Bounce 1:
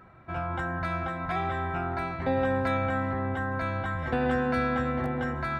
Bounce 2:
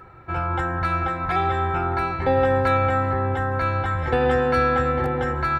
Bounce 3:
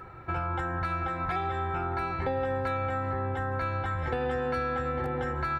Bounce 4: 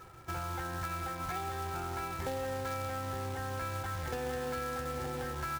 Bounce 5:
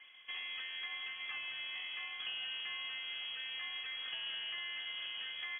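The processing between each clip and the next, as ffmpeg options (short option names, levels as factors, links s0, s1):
-af "aecho=1:1:2.3:0.59,volume=2"
-af "acompressor=threshold=0.0355:ratio=4"
-af "acrusher=bits=2:mode=log:mix=0:aa=0.000001,volume=0.447"
-af "lowpass=f=2900:t=q:w=0.5098,lowpass=f=2900:t=q:w=0.6013,lowpass=f=2900:t=q:w=0.9,lowpass=f=2900:t=q:w=2.563,afreqshift=-3400,volume=0.531"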